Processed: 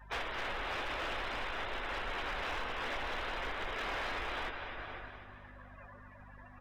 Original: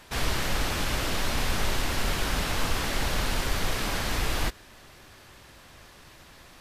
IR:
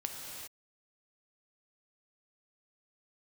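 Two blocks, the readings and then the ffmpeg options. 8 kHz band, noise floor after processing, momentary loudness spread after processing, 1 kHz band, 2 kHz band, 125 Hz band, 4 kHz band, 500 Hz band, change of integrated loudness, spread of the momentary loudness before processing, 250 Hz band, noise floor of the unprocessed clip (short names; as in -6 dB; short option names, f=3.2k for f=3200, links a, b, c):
-24.0 dB, -54 dBFS, 16 LU, -5.0 dB, -5.5 dB, -18.0 dB, -11.0 dB, -7.0 dB, -9.5 dB, 1 LU, -14.5 dB, -52 dBFS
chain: -filter_complex "[0:a]bandreject=f=4.4k:w=14,acompressor=threshold=-29dB:ratio=10,equalizer=f=150:w=0.78:g=-10.5,aeval=exprs='val(0)+0.00447*(sin(2*PI*50*n/s)+sin(2*PI*2*50*n/s)/2+sin(2*PI*3*50*n/s)/3+sin(2*PI*4*50*n/s)/4+sin(2*PI*5*50*n/s)/5)':c=same,bass=f=250:g=-11,treble=f=4k:g=-11,asplit=2[a][b];[1:a]atrim=start_sample=2205,asetrate=26460,aresample=44100[c];[b][c]afir=irnorm=-1:irlink=0,volume=-7dB[d];[a][d]amix=inputs=2:normalize=0,afftdn=nr=30:nf=-44,aecho=1:1:251|502|753|1004|1255:0.316|0.142|0.064|0.0288|0.013,asoftclip=type=hard:threshold=-30.5dB,alimiter=level_in=12dB:limit=-24dB:level=0:latency=1:release=113,volume=-12dB,volume=3.5dB"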